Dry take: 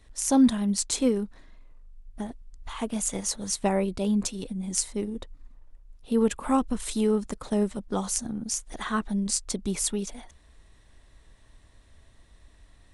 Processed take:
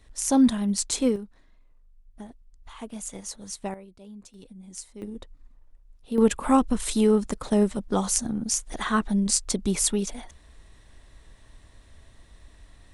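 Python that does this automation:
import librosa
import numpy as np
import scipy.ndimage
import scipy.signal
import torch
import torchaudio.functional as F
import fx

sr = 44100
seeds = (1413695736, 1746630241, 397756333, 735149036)

y = fx.gain(x, sr, db=fx.steps((0.0, 0.5), (1.16, -7.5), (3.74, -19.5), (4.34, -12.5), (5.02, -3.5), (6.18, 4.0)))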